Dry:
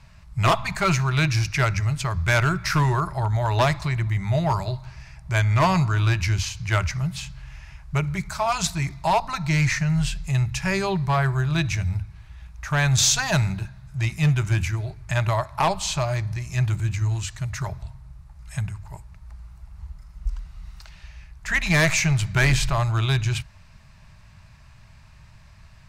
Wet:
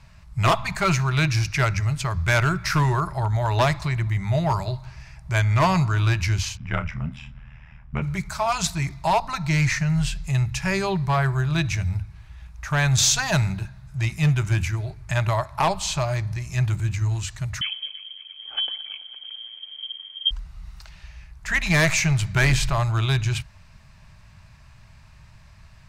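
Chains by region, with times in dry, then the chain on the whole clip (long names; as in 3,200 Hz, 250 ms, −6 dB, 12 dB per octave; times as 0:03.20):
0:06.57–0:08.02: Savitzky-Golay smoothing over 25 samples + amplitude modulation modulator 78 Hz, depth 90% + double-tracking delay 32 ms −11 dB
0:17.61–0:20.31: echo machine with several playback heads 111 ms, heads second and third, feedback 61%, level −19 dB + voice inversion scrambler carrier 3,200 Hz
whole clip: no processing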